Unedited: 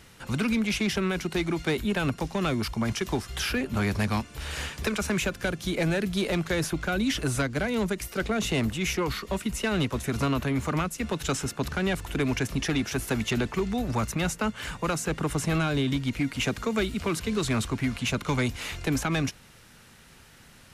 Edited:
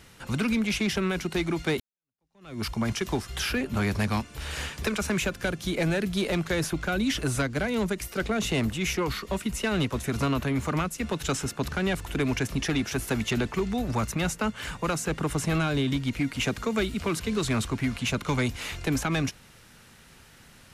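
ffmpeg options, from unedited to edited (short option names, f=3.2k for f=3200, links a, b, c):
-filter_complex "[0:a]asplit=2[a][b];[a]atrim=end=1.8,asetpts=PTS-STARTPTS,afade=t=out:st=1.796:d=0.004:c=hsin[c];[b]atrim=start=1.8,asetpts=PTS-STARTPTS,afade=t=in:d=0.83:c=exp[d];[c][d]concat=n=2:v=0:a=1"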